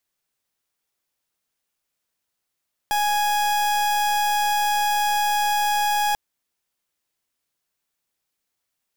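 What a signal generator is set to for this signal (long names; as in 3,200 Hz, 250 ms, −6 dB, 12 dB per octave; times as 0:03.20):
pulse wave 831 Hz, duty 39% −21 dBFS 3.24 s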